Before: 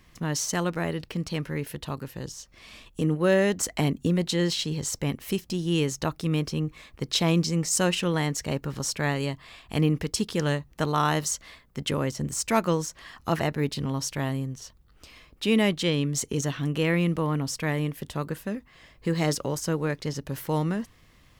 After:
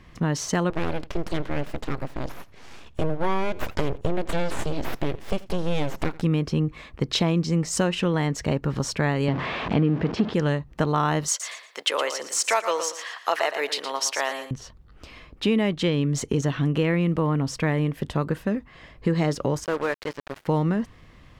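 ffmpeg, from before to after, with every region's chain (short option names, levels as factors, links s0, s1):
-filter_complex "[0:a]asettb=1/sr,asplit=3[s0][s1][s2];[s0]atrim=end=0.704[s3];[s1]atrim=start=0.7:end=6.22,asetpts=PTS-STARTPTS,afade=t=in:d=0.004:c=qsin,afade=t=out:st=5.516:d=0.004:c=qsin,aeval=exprs='abs(val(0))':c=same,aecho=1:1:83:0.0708,atrim=end_sample=243432[s4];[s2]atrim=start=6.216[s5];[s3][s4]acrossfade=d=0.004:c1=hsin:c2=qsin[s6];[s6][s5]acrossfade=d=0.004:c1=qsin:c2=hsin,asettb=1/sr,asplit=3[s7][s8][s9];[s7]atrim=end=9.284[s10];[s8]atrim=start=9.28:end=10.34,asetpts=PTS-STARTPTS,afade=t=in:d=0.004:c=qsin,afade=t=out:st=1.056:d=0.004:c=qsin,aeval=exprs='val(0)+0.5*0.0422*sgn(val(0))':c=same,highpass=220,lowpass=4200,aemphasis=mode=reproduction:type=bsi[s11];[s9]atrim=start=10.336[s12];[s10][s11]acrossfade=d=0.004:c1=hsin:c2=qsin[s13];[s13][s12]acrossfade=d=0.004:c1=qsin:c2=hsin,asettb=1/sr,asplit=3[s14][s15][s16];[s14]atrim=end=11.284[s17];[s15]atrim=start=11.28:end=14.51,asetpts=PTS-STARTPTS,afade=t=in:d=0.004:c=qsin,afade=t=out:st=3.226:d=0.004:c=qsin,highpass=f=500:w=0.5412,highpass=f=500:w=1.3066,highshelf=f=2100:g=9.5,aecho=1:1:116|232|348:0.282|0.0648|0.0149,atrim=end_sample=142443[s18];[s16]atrim=start=14.506[s19];[s17][s18]acrossfade=d=0.004:c1=hsin:c2=qsin[s20];[s20][s19]acrossfade=d=0.004:c1=qsin:c2=hsin,asettb=1/sr,asplit=3[s21][s22][s23];[s21]atrim=end=19.644[s24];[s22]atrim=start=19.64:end=20.46,asetpts=PTS-STARTPTS,afade=t=in:d=0.004:c=qsin,afade=t=out:st=0.816:d=0.004:c=qsin,highpass=500,acrossover=split=3700[s25][s26];[s26]acompressor=threshold=0.00562:ratio=4:attack=1:release=60[s27];[s25][s27]amix=inputs=2:normalize=0,acrusher=bits=5:mix=0:aa=0.5[s28];[s23]atrim=start=20.456[s29];[s24][s28]acrossfade=d=0.004:c1=hsin:c2=qsin[s30];[s30][s29]acrossfade=d=0.004:c1=qsin:c2=hsin,aemphasis=mode=reproduction:type=75kf,acompressor=threshold=0.0447:ratio=4,volume=2.51"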